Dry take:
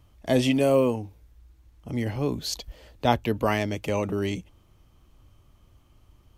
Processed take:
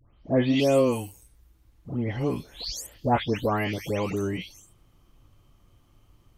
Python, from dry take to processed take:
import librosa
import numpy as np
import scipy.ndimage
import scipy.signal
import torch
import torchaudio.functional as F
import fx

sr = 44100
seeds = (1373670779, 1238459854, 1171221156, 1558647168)

y = fx.spec_delay(x, sr, highs='late', ms=324)